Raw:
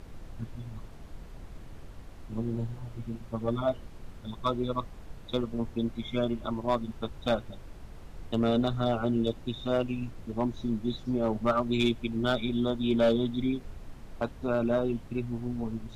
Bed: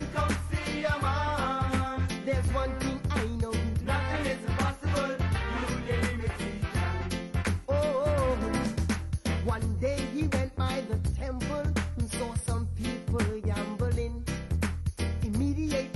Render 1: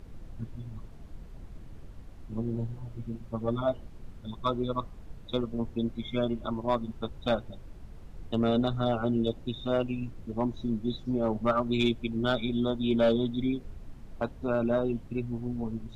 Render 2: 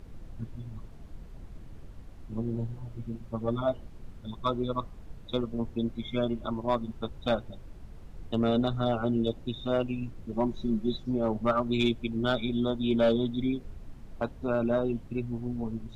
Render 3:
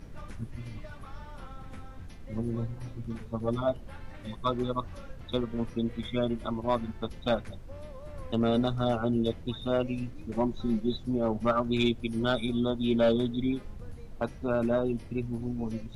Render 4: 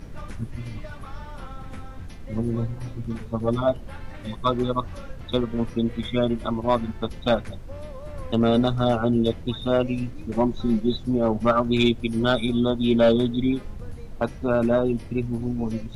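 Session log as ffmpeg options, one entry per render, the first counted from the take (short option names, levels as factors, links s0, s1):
-af "afftdn=nr=6:nf=-47"
-filter_complex "[0:a]asettb=1/sr,asplit=3[s0][s1][s2];[s0]atrim=end=10.324[s3];[s1]atrim=start=10.32:end=10.98,asetpts=PTS-STARTPTS,afade=t=in:d=0.004:c=qsin,afade=t=out:st=0.656:d=0.004:c=qsin,aecho=1:1:5.3:0.64,atrim=end_sample=29106[s4];[s2]atrim=start=10.976[s5];[s3][s4]acrossfade=d=0.004:c1=hsin:c2=qsin[s6];[s6][s5]acrossfade=d=0.004:c1=qsin:c2=hsin"
-filter_complex "[1:a]volume=0.106[s0];[0:a][s0]amix=inputs=2:normalize=0"
-af "volume=2.11"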